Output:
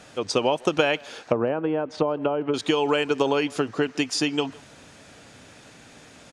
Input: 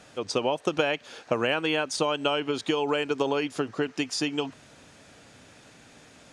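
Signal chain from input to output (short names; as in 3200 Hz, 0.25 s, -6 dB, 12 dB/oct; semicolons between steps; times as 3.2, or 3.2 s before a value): 1.24–2.54 treble ducked by the level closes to 790 Hz, closed at -22.5 dBFS; speakerphone echo 0.16 s, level -23 dB; gain +4 dB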